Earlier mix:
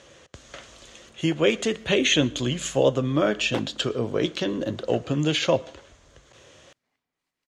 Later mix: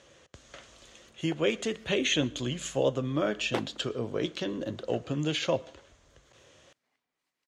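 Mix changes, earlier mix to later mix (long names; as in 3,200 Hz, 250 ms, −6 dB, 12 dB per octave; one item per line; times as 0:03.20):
speech −6.5 dB
background: add low-shelf EQ 160 Hz −10 dB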